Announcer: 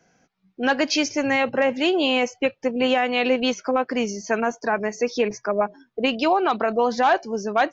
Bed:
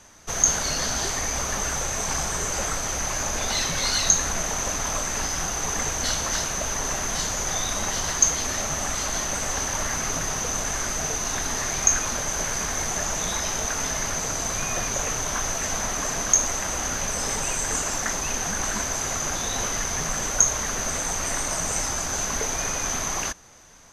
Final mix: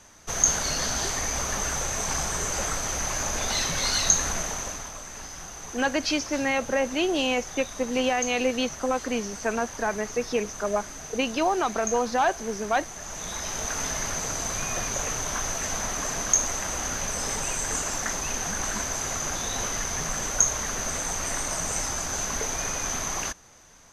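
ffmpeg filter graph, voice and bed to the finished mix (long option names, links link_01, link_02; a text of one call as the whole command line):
ffmpeg -i stem1.wav -i stem2.wav -filter_complex "[0:a]adelay=5150,volume=-4.5dB[link_01];[1:a]volume=8.5dB,afade=type=out:start_time=4.29:duration=0.63:silence=0.281838,afade=type=in:start_time=12.98:duration=0.8:silence=0.316228[link_02];[link_01][link_02]amix=inputs=2:normalize=0" out.wav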